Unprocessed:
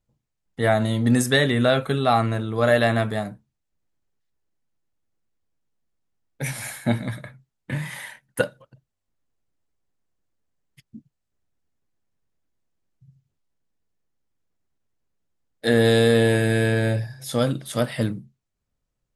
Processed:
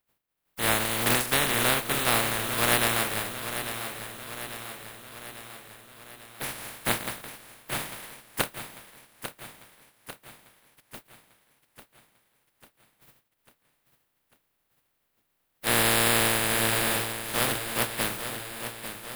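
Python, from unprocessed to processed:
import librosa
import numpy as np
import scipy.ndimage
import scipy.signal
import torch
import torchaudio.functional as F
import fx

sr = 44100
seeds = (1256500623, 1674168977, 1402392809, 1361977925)

p1 = fx.spec_flatten(x, sr, power=0.17)
p2 = fx.peak_eq(p1, sr, hz=6300.0, db=-11.0, octaves=1.3)
p3 = p2 + fx.echo_feedback(p2, sr, ms=846, feedback_pct=57, wet_db=-10, dry=0)
y = p3 * librosa.db_to_amplitude(-2.5)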